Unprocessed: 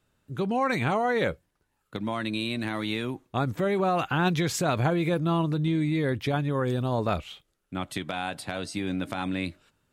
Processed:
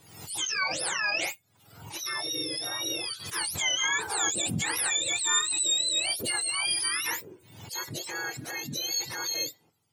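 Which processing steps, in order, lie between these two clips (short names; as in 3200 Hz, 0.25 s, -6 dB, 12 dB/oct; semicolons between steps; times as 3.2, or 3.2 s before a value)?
spectrum mirrored in octaves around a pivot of 1100 Hz; tilt shelf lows -6.5 dB, about 1100 Hz; backwards sustainer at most 71 dB/s; gain -2.5 dB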